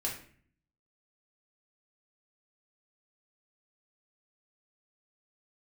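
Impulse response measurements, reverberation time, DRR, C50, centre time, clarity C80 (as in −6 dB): 0.50 s, −3.0 dB, 6.5 dB, 28 ms, 11.0 dB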